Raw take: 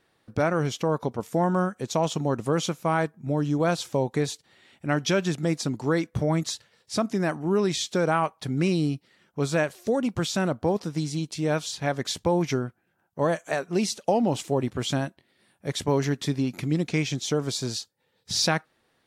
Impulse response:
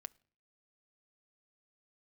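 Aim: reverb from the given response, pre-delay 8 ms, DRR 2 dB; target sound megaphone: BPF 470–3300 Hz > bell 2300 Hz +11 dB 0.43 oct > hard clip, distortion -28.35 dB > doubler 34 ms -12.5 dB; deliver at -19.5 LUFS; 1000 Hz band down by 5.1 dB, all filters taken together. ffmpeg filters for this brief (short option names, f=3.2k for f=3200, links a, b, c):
-filter_complex "[0:a]equalizer=f=1k:t=o:g=-7,asplit=2[a][b];[1:a]atrim=start_sample=2205,adelay=8[c];[b][c]afir=irnorm=-1:irlink=0,volume=3.5dB[d];[a][d]amix=inputs=2:normalize=0,highpass=470,lowpass=3.3k,equalizer=f=2.3k:t=o:w=0.43:g=11,asoftclip=type=hard:threshold=-15dB,asplit=2[e][f];[f]adelay=34,volume=-12.5dB[g];[e][g]amix=inputs=2:normalize=0,volume=10dB"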